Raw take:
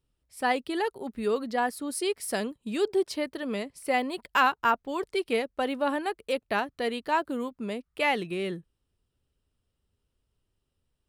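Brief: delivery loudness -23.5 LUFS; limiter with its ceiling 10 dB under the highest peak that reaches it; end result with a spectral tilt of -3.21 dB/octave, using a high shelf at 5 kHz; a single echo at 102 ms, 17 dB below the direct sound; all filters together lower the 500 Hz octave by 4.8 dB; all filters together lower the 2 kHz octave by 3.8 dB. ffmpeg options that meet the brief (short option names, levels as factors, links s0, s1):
-af "equalizer=f=500:t=o:g=-6,equalizer=f=2000:t=o:g=-5.5,highshelf=f=5000:g=6.5,alimiter=limit=0.0668:level=0:latency=1,aecho=1:1:102:0.141,volume=3.55"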